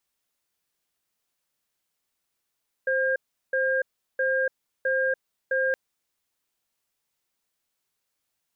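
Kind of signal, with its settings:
tone pair in a cadence 525 Hz, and 1,610 Hz, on 0.29 s, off 0.37 s, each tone −24 dBFS 2.87 s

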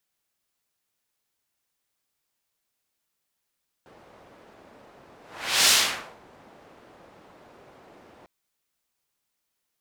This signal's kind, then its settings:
pass-by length 4.40 s, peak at 0:01.83, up 0.51 s, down 0.54 s, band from 590 Hz, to 5,100 Hz, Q 0.78, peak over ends 34.5 dB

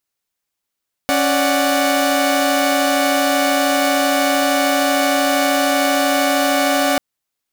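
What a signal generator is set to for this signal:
held notes C#4/D5/F#5 saw, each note −16 dBFS 5.89 s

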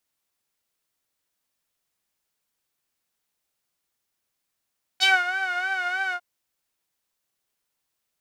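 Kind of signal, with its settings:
subtractive patch with vibrato F#5, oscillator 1 saw, sub −15 dB, noise −26 dB, filter bandpass, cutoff 1,200 Hz, Q 2.7, filter envelope 2 octaves, filter decay 0.12 s, filter sustain 20%, attack 31 ms, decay 0.20 s, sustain −13 dB, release 0.07 s, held 1.13 s, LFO 3.2 Hz, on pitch 75 cents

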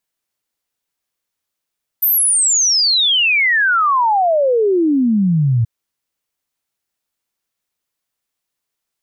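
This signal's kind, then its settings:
exponential sine sweep 14,000 Hz → 110 Hz 3.63 s −11 dBFS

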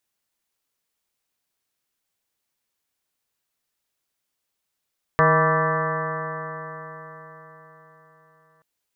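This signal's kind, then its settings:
stiff-string partials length 3.43 s, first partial 156 Hz, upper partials −13/−0.5/−1/−9/−2.5/3/−9.5/−6/−2/−12 dB, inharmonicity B 0.0027, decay 4.50 s, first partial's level −20.5 dB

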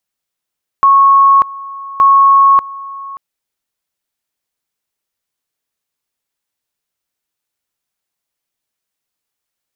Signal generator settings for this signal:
tone at two levels in turn 1,100 Hz −4 dBFS, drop 20 dB, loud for 0.59 s, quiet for 0.58 s, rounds 2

